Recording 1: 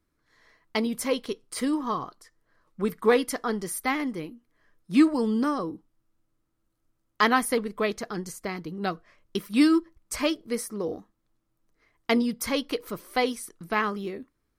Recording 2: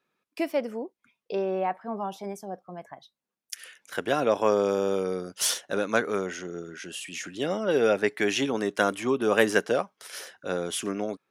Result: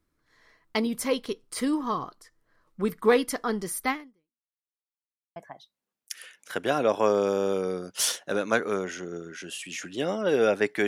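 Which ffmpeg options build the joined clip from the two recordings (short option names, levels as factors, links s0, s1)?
-filter_complex "[0:a]apad=whole_dur=10.87,atrim=end=10.87,asplit=2[s0][s1];[s0]atrim=end=4.65,asetpts=PTS-STARTPTS,afade=t=out:st=3.9:d=0.75:c=exp[s2];[s1]atrim=start=4.65:end=5.36,asetpts=PTS-STARTPTS,volume=0[s3];[1:a]atrim=start=2.78:end=8.29,asetpts=PTS-STARTPTS,afade=t=in:d=0.004:c=hsin[s4];[s2][s3][s4]concat=n=3:v=0:a=1"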